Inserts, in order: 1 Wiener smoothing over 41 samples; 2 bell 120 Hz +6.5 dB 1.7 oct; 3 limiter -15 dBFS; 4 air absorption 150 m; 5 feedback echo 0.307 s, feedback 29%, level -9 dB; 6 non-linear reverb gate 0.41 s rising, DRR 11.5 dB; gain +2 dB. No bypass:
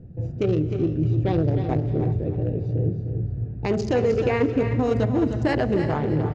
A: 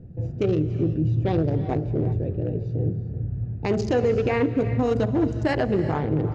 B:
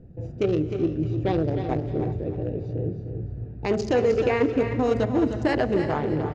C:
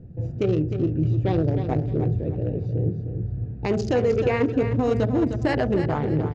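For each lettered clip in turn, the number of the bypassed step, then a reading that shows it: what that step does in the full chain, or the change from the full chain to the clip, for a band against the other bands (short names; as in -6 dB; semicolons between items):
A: 5, echo-to-direct -6.5 dB to -11.5 dB; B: 2, momentary loudness spread change +4 LU; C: 6, echo-to-direct -6.5 dB to -8.5 dB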